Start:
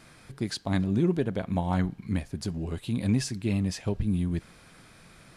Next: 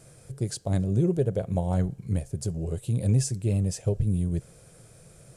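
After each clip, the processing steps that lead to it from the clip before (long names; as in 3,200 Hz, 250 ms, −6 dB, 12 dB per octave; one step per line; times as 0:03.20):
octave-band graphic EQ 125/250/500/1,000/2,000/4,000/8,000 Hz +9/−10/+10/−9/−8/−8/+9 dB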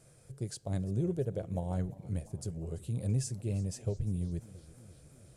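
feedback echo with a swinging delay time 343 ms, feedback 64%, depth 199 cents, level −20 dB
level −8.5 dB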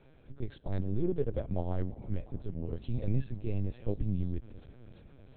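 linear-prediction vocoder at 8 kHz pitch kept
level +3 dB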